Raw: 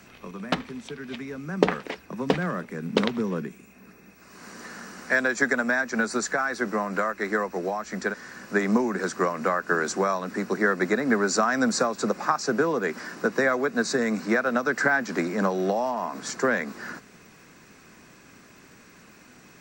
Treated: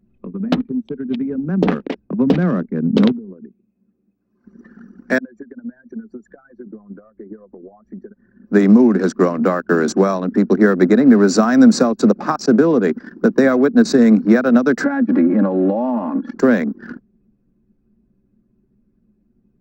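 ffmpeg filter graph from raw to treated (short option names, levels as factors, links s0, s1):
-filter_complex "[0:a]asettb=1/sr,asplit=3[s0][s1][s2];[s0]atrim=end=3.124[s3];[s1]atrim=start=3.12:end=4.45,asetpts=PTS-STARTPTS,afade=t=in:d=0.004:c=qsin,afade=t=out:st=1.326:d=0.004:c=qsin,highpass=f=370:p=1,acompressor=threshold=0.0141:ratio=8:attack=3.2:release=140:knee=1:detection=peak[s4];[s2]atrim=start=4.446[s5];[s3][s4]acrossfade=d=0.004:c1=hsin:c2=qsin[s6];[s6][s5]acrossfade=d=0.004:c1=qsin:c2=hsin,asettb=1/sr,asplit=3[s7][s8][s9];[s7]atrim=end=5.184[s10];[s8]atrim=start=5.18:end=8.46,asetpts=PTS-STARTPTS,afade=t=in:d=0.004:c=qsin,afade=t=out:st=3.276:d=0.004:c=qsin,highshelf=f=2300:g=-9.5,acompressor=threshold=0.0126:ratio=8:attack=3.2:release=140:knee=1:detection=peak[s11];[s9]atrim=start=8.456[s12];[s10][s11]acrossfade=d=0.004:c1=hsin:c2=qsin[s13];[s13][s12]acrossfade=d=0.004:c1=qsin:c2=hsin,asettb=1/sr,asplit=3[s14][s15][s16];[s14]atrim=end=14.844[s17];[s15]atrim=start=14.84:end=16.35,asetpts=PTS-STARTPTS,afade=t=in:d=0.004:c=qsin,afade=t=out:st=1.506:d=0.004:c=qsin,highpass=130,lowpass=2300,aecho=1:1:3.6:0.91,atrim=end_sample=66591,acompressor=threshold=0.0501:ratio=3:attack=3.2:release=140:knee=1:detection=peak[s18];[s16]atrim=start=16.346[s19];[s17][s18]acrossfade=d=0.004:c1=hsin:c2=qsin[s20];[s20][s19]acrossfade=d=0.004:c1=qsin:c2=hsin,anlmdn=10,equalizer=f=250:t=o:w=1:g=9,equalizer=f=1000:t=o:w=1:g=-5,equalizer=f=2000:t=o:w=1:g=-7,equalizer=f=8000:t=o:w=1:g=-8,alimiter=level_in=3.16:limit=0.891:release=50:level=0:latency=1,volume=0.891"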